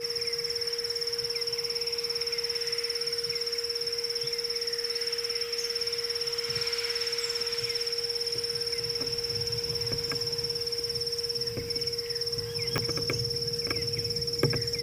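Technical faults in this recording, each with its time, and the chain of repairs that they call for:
tone 470 Hz -35 dBFS
12.78 pop -12 dBFS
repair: de-click; notch 470 Hz, Q 30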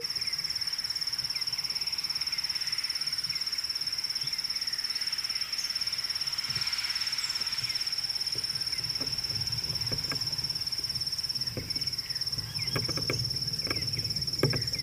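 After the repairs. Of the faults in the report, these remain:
12.78 pop

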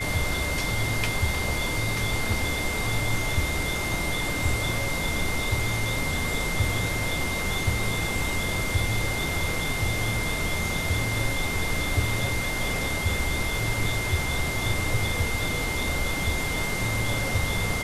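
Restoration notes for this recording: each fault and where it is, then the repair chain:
tone 2100 Hz -30 dBFS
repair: notch 2100 Hz, Q 30

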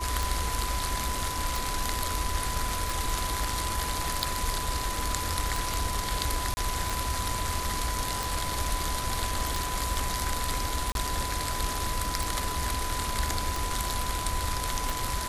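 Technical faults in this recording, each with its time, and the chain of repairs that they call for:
tick 45 rpm
tone 1000 Hz -34 dBFS
6.54–6.57 gap 30 ms
10.92–10.95 gap 32 ms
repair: de-click; notch 1000 Hz, Q 30; interpolate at 6.54, 30 ms; interpolate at 10.92, 32 ms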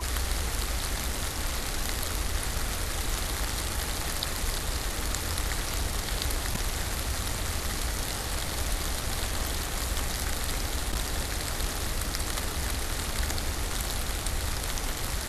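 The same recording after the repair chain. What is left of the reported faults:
none

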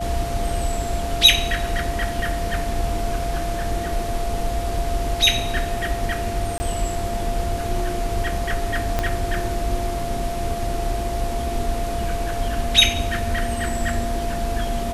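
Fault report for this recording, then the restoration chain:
tone 690 Hz -27 dBFS
6.58–6.6 gap 20 ms
8.99 pop -7 dBFS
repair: de-click; notch 690 Hz, Q 30; interpolate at 6.58, 20 ms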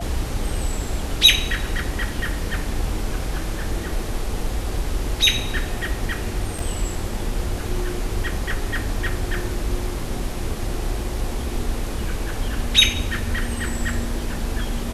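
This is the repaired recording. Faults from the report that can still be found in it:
8.99 pop

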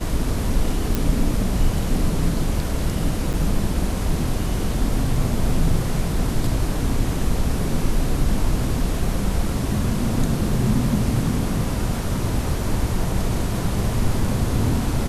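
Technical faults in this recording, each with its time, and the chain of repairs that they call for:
0.95 pop
3.33–3.34 gap 7.7 ms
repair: de-click; interpolate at 3.33, 7.7 ms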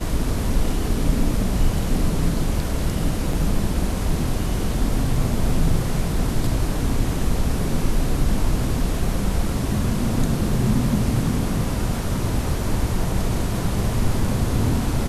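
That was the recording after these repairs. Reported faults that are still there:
none

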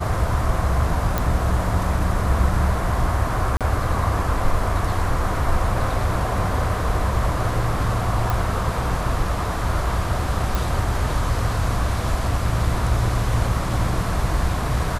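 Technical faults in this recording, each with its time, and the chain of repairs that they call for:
1.18 pop
3.57–3.61 gap 37 ms
8.3 pop
10.55 pop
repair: de-click; interpolate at 3.57, 37 ms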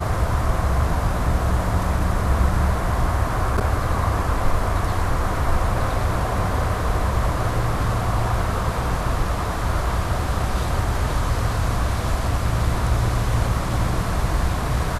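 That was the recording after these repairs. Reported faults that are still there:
none

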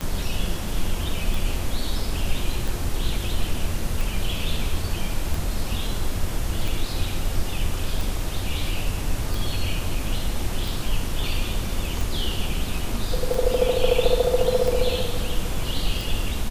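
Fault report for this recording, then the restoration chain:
tick 45 rpm -15 dBFS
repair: de-click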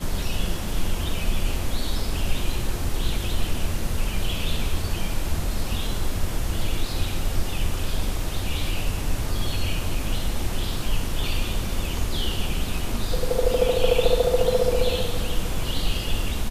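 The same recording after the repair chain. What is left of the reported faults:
none

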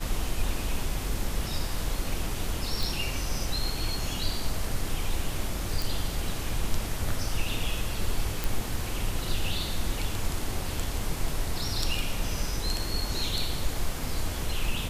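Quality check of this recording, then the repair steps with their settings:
2.83 pop
5.82 pop
8.44 pop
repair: de-click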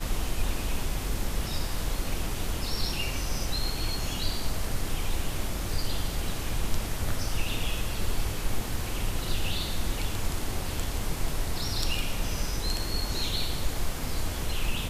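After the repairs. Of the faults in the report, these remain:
none

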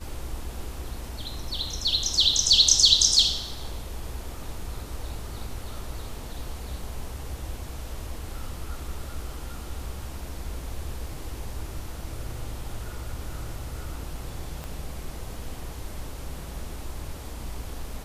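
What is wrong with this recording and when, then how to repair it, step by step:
14.64 pop -21 dBFS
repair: de-click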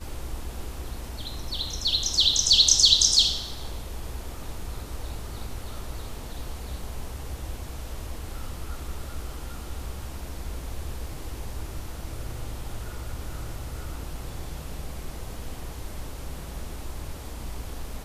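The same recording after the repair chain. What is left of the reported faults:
14.64 pop

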